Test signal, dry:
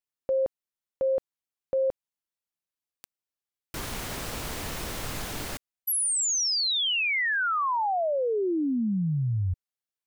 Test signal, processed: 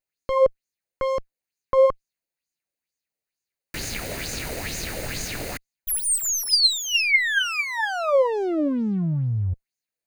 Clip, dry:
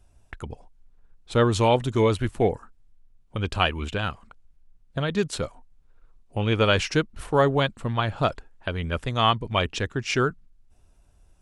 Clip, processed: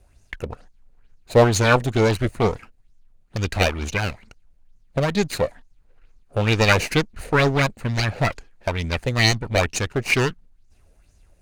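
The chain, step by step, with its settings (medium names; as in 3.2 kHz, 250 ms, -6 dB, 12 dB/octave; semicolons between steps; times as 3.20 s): comb filter that takes the minimum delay 0.46 ms; sweeping bell 2.2 Hz 500–6700 Hz +11 dB; trim +3 dB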